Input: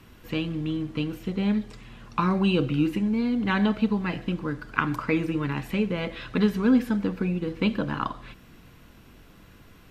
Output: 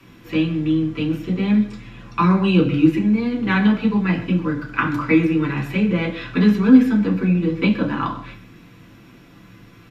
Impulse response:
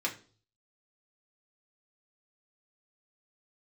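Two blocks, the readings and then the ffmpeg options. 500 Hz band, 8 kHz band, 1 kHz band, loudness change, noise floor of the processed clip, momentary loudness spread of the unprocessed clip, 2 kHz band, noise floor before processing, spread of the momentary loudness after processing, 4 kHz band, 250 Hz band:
+5.0 dB, n/a, +5.5 dB, +7.5 dB, -46 dBFS, 8 LU, +6.5 dB, -52 dBFS, 9 LU, +3.5 dB, +8.0 dB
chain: -filter_complex "[0:a]acrossover=split=210|930[a][b][c];[a]acontrast=71[d];[d][b][c]amix=inputs=3:normalize=0,asplit=2[e][f];[f]adelay=130,highpass=300,lowpass=3.4k,asoftclip=type=hard:threshold=-14dB,volume=-16dB[g];[e][g]amix=inputs=2:normalize=0[h];[1:a]atrim=start_sample=2205[i];[h][i]afir=irnorm=-1:irlink=0"

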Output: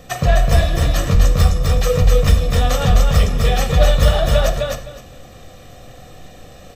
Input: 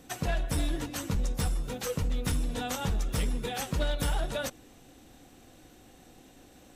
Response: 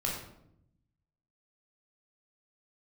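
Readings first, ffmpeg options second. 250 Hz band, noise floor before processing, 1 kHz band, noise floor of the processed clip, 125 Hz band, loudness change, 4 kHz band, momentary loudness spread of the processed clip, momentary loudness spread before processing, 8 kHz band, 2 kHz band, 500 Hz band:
+10.5 dB, -56 dBFS, +15.0 dB, -40 dBFS, +18.0 dB, +16.0 dB, +14.0 dB, 4 LU, 3 LU, +10.0 dB, +13.5 dB, +17.5 dB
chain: -filter_complex "[0:a]equalizer=f=10k:w=1.3:g=-10,aecho=1:1:1.7:0.58,aecho=1:1:257|514|771:0.708|0.127|0.0229,asplit=2[a][b];[1:a]atrim=start_sample=2205,afade=t=out:st=0.15:d=0.01,atrim=end_sample=7056[c];[b][c]afir=irnorm=-1:irlink=0,volume=-7.5dB[d];[a][d]amix=inputs=2:normalize=0,volume=8.5dB"

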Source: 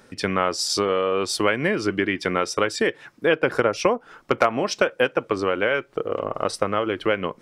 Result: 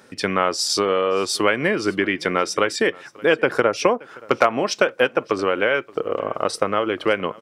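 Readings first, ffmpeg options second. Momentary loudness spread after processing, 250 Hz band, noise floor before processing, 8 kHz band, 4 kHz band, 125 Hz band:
5 LU, +1.0 dB, -54 dBFS, +2.5 dB, +2.5 dB, -1.0 dB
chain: -filter_complex "[0:a]highpass=f=160:p=1,asplit=2[a][b];[b]aecho=0:1:575:0.0668[c];[a][c]amix=inputs=2:normalize=0,volume=2.5dB"

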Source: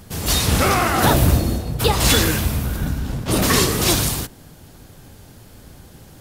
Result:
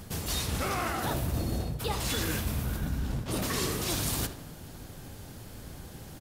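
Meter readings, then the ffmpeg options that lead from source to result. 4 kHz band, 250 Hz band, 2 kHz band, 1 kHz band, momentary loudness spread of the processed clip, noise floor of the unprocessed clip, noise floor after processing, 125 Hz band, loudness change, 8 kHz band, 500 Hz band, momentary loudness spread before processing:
-13.5 dB, -12.5 dB, -13.5 dB, -14.0 dB, 16 LU, -45 dBFS, -46 dBFS, -12.5 dB, -13.5 dB, -13.0 dB, -13.5 dB, 9 LU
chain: -filter_complex "[0:a]asplit=2[a][b];[b]adelay=79,lowpass=f=4.6k:p=1,volume=-15dB,asplit=2[c][d];[d]adelay=79,lowpass=f=4.6k:p=1,volume=0.54,asplit=2[e][f];[f]adelay=79,lowpass=f=4.6k:p=1,volume=0.54,asplit=2[g][h];[h]adelay=79,lowpass=f=4.6k:p=1,volume=0.54,asplit=2[i][j];[j]adelay=79,lowpass=f=4.6k:p=1,volume=0.54[k];[a][c][e][g][i][k]amix=inputs=6:normalize=0,areverse,acompressor=threshold=-26dB:ratio=10,areverse,volume=-1.5dB"

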